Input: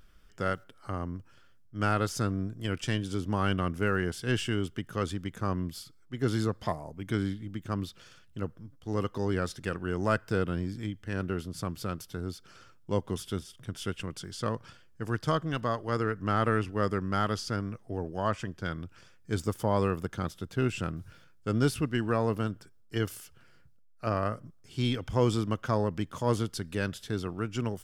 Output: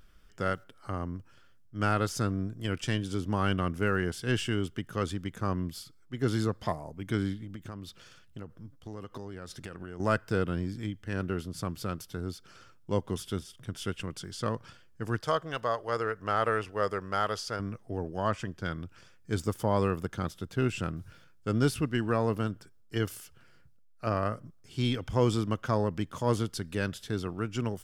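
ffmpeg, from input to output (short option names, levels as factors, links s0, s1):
-filter_complex "[0:a]asettb=1/sr,asplit=3[s0][s1][s2];[s0]atrim=end=7.434[s3];[s1]atrim=start=7.43:end=10,asetpts=PTS-STARTPTS,afade=t=in:d=0.004:c=qsin,afade=t=out:st=2.566:d=0.004:c=qsin,acompressor=threshold=0.0158:ratio=12:attack=3.2:release=140:knee=1:detection=peak[s4];[s2]atrim=start=9.996[s5];[s3][s4]acrossfade=d=0.004:c1=hsin:c2=qsin[s6];[s6][s5]acrossfade=d=0.004:c1=qsin:c2=hsin,asettb=1/sr,asplit=3[s7][s8][s9];[s7]atrim=end=15.214[s10];[s8]atrim=start=15.21:end=17.6,asetpts=PTS-STARTPTS,afade=t=in:d=0.004:c=qsin,afade=t=out:st=2.386:d=0.004:c=qsin,lowshelf=f=370:t=q:w=1.5:g=-8[s11];[s9]atrim=start=17.596[s12];[s10][s11]acrossfade=d=0.004:c1=hsin:c2=qsin[s13];[s13][s12]acrossfade=d=0.004:c1=qsin:c2=hsin"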